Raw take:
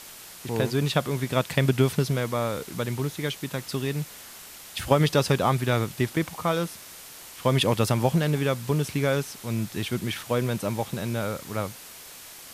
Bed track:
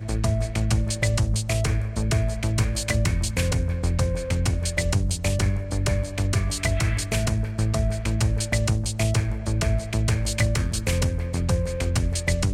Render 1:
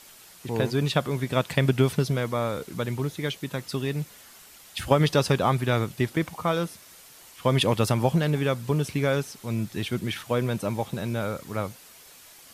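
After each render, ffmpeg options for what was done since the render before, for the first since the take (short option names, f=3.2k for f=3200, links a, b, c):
-af "afftdn=nr=7:nf=-44"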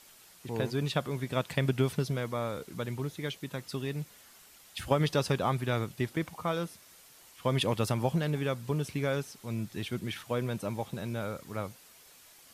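-af "volume=-6.5dB"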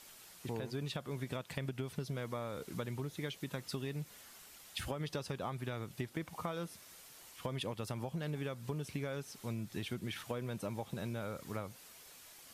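-af "alimiter=limit=-20dB:level=0:latency=1:release=385,acompressor=threshold=-36dB:ratio=6"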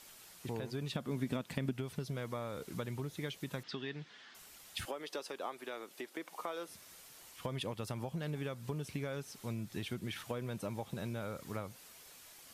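-filter_complex "[0:a]asettb=1/sr,asplit=3[a][b][c];[a]atrim=end=0.924[d];[b]atrim=start=0.92:end=1.73,asetpts=PTS-STARTPTS,afade=t=in:d=0.004:c=qsin,afade=t=out:st=0.806:d=0.004:c=qsin,equalizer=f=240:t=o:w=0.77:g=9.5[e];[c]atrim=start=1.726[f];[d][e]acrossfade=d=0.004:c1=hsin:c2=qsin[g];[g][f]acrossfade=d=0.004:c1=qsin:c2=hsin,asettb=1/sr,asplit=3[h][i][j];[h]atrim=end=3.634[k];[i]atrim=start=3.63:end=4.35,asetpts=PTS-STARTPTS,afade=t=in:d=0.004:c=qsin,afade=t=out:st=0.716:d=0.004:c=qsin,highpass=200,equalizer=f=560:t=q:w=4:g=-6,equalizer=f=1.7k:t=q:w=4:g=8,equalizer=f=3.3k:t=q:w=4:g=6,lowpass=f=5k:w=0.5412,lowpass=f=5k:w=1.3066[l];[j]atrim=start=4.346[m];[k][l]acrossfade=d=0.004:c1=hsin:c2=qsin[n];[n][m]acrossfade=d=0.004:c1=qsin:c2=hsin,asettb=1/sr,asplit=3[o][p][q];[o]atrim=end=4.854[r];[p]atrim=start=4.85:end=6.68,asetpts=PTS-STARTPTS,afade=t=in:d=0.004:c=qsin,afade=t=out:st=1.826:d=0.004:c=qsin,highpass=f=310:w=0.5412,highpass=f=310:w=1.3066[s];[q]atrim=start=6.676[t];[r][s]acrossfade=d=0.004:c1=hsin:c2=qsin[u];[u][t]acrossfade=d=0.004:c1=qsin:c2=hsin"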